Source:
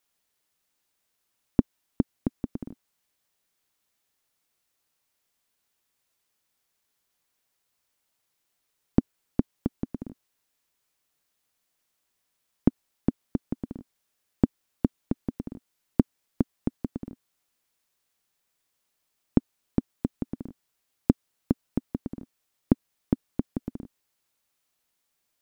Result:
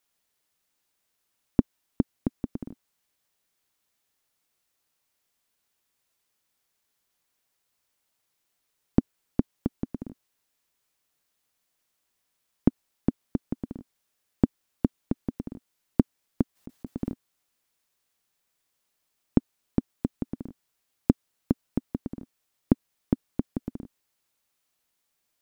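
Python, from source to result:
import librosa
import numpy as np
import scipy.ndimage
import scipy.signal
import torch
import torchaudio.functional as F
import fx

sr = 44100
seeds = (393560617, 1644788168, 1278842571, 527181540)

y = fx.over_compress(x, sr, threshold_db=-36.0, ratio=-1.0, at=(16.55, 17.12), fade=0.02)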